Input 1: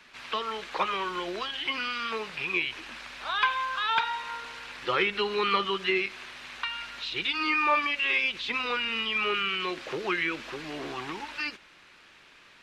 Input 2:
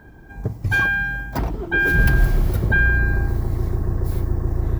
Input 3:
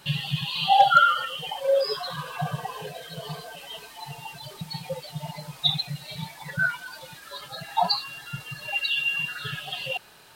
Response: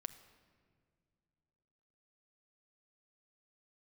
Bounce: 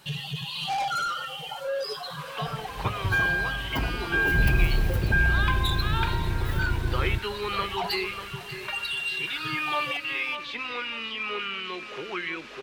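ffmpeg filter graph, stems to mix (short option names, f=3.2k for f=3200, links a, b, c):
-filter_complex "[0:a]adelay=2050,volume=-4dB,asplit=2[a][b];[b]volume=-10dB[c];[1:a]adelay=2400,volume=-5.5dB,asplit=2[d][e];[e]volume=-17dB[f];[2:a]asoftclip=type=tanh:threshold=-23dB,volume=-5dB,asplit=3[g][h][i];[h]volume=-6.5dB[j];[i]volume=-15.5dB[k];[3:a]atrim=start_sample=2205[l];[j][l]afir=irnorm=-1:irlink=0[m];[c][f][k]amix=inputs=3:normalize=0,aecho=0:1:592|1184|1776|2368|2960|3552:1|0.41|0.168|0.0689|0.0283|0.0116[n];[a][d][g][m][n]amix=inputs=5:normalize=0"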